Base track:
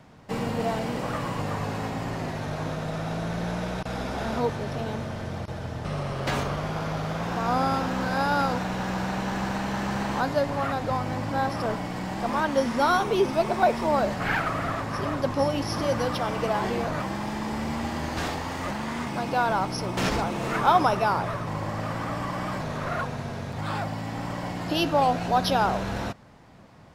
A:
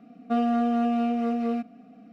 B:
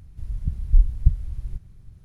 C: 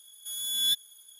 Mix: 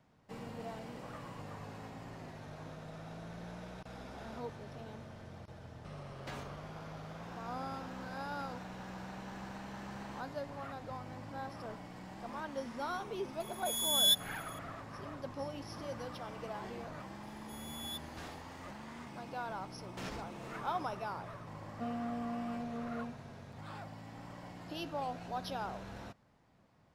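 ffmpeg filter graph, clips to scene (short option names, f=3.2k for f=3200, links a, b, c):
-filter_complex "[3:a]asplit=2[a][b];[0:a]volume=-17dB[c];[a]atrim=end=1.19,asetpts=PTS-STARTPTS,volume=-1dB,afade=t=in:d=0.004:c=hsin,afade=t=out:st=1.186:d=0.004:c=hsin,adelay=13400[d];[b]atrim=end=1.19,asetpts=PTS-STARTPTS,volume=-18dB,afade=t=in:d=0.004:c=hsin,afade=t=out:st=1.186:d=0.004:c=hsin,adelay=17230[e];[1:a]atrim=end=2.12,asetpts=PTS-STARTPTS,volume=-15.5dB,afade=t=in:d=0.004:c=hsin,afade=t=out:st=2.116:d=0.004:c=hsin,adelay=21500[f];[c][d][e][f]amix=inputs=4:normalize=0"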